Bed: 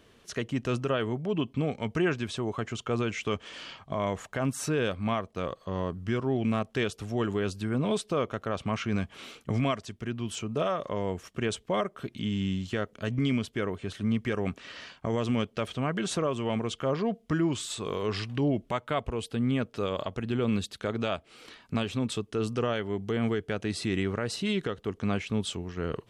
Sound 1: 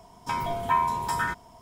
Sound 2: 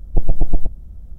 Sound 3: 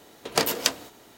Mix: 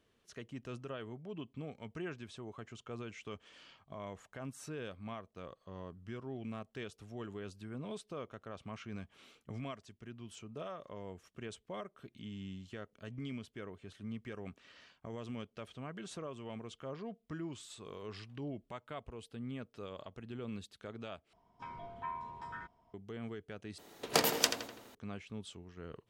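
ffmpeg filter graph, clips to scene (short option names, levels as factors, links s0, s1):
-filter_complex "[0:a]volume=0.168[s0];[1:a]lowpass=3000[s1];[3:a]asplit=2[s2][s3];[s3]adelay=83,lowpass=f=3900:p=1,volume=0.473,asplit=2[s4][s5];[s5]adelay=83,lowpass=f=3900:p=1,volume=0.53,asplit=2[s6][s7];[s7]adelay=83,lowpass=f=3900:p=1,volume=0.53,asplit=2[s8][s9];[s9]adelay=83,lowpass=f=3900:p=1,volume=0.53,asplit=2[s10][s11];[s11]adelay=83,lowpass=f=3900:p=1,volume=0.53,asplit=2[s12][s13];[s13]adelay=83,lowpass=f=3900:p=1,volume=0.53,asplit=2[s14][s15];[s15]adelay=83,lowpass=f=3900:p=1,volume=0.53[s16];[s2][s4][s6][s8][s10][s12][s14][s16]amix=inputs=8:normalize=0[s17];[s0]asplit=3[s18][s19][s20];[s18]atrim=end=21.334[s21];[s1]atrim=end=1.61,asetpts=PTS-STARTPTS,volume=0.126[s22];[s19]atrim=start=22.936:end=23.784[s23];[s17]atrim=end=1.17,asetpts=PTS-STARTPTS,volume=0.501[s24];[s20]atrim=start=24.946[s25];[s21][s22]acrossfade=d=0.004:c1=hsin:c2=hsin[s26];[s26][s23]acrossfade=d=0.004:c1=hsin:c2=hsin[s27];[s27][s24]acrossfade=d=0.004:c1=hsin:c2=hsin[s28];[s28][s25]acrossfade=d=0.004:c1=hsin:c2=hsin"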